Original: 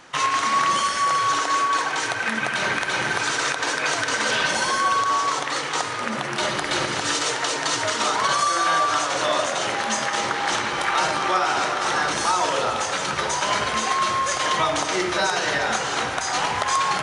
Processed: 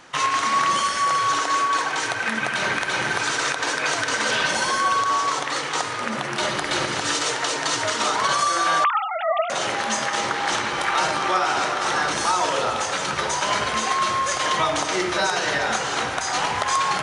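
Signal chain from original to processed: 8.84–9.50 s: formants replaced by sine waves

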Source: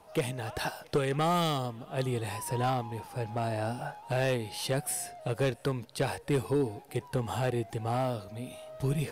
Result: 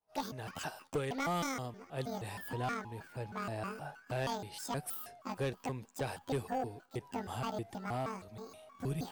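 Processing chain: pitch shift switched off and on +10 st, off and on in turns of 158 ms; expander -43 dBFS; trim -7 dB

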